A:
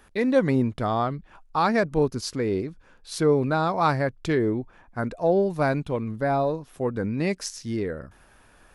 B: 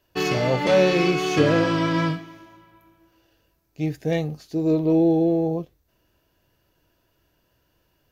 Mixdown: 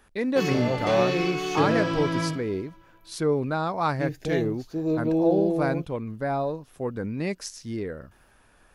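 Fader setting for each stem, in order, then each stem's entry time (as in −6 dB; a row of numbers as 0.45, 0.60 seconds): −3.5, −5.0 decibels; 0.00, 0.20 seconds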